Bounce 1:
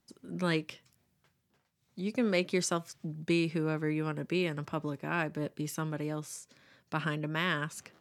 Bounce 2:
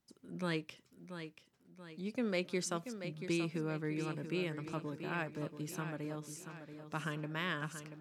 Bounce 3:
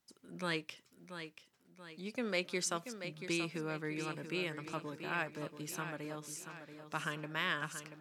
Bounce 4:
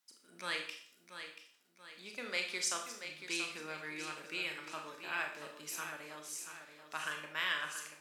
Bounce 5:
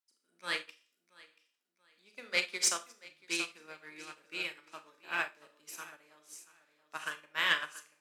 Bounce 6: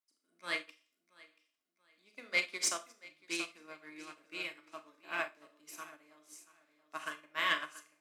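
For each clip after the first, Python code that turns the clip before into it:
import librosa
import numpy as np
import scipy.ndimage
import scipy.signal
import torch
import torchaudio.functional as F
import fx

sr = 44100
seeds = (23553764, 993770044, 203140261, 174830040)

y1 = fx.echo_feedback(x, sr, ms=683, feedback_pct=46, wet_db=-9.5)
y1 = y1 * librosa.db_to_amplitude(-6.5)
y2 = fx.low_shelf(y1, sr, hz=490.0, db=-9.5)
y2 = y2 * librosa.db_to_amplitude(4.0)
y3 = fx.highpass(y2, sr, hz=1400.0, slope=6)
y3 = fx.rev_schroeder(y3, sr, rt60_s=0.52, comb_ms=26, drr_db=3.0)
y3 = y3 * librosa.db_to_amplitude(1.5)
y4 = fx.diode_clip(y3, sr, knee_db=-22.5)
y4 = scipy.signal.sosfilt(scipy.signal.butter(2, 180.0, 'highpass', fs=sr, output='sos'), y4)
y4 = fx.upward_expand(y4, sr, threshold_db=-49.0, expansion=2.5)
y4 = y4 * librosa.db_to_amplitude(9.0)
y5 = fx.small_body(y4, sr, hz=(290.0, 650.0, 1100.0, 2100.0), ring_ms=65, db=11)
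y5 = y5 * librosa.db_to_amplitude(-4.0)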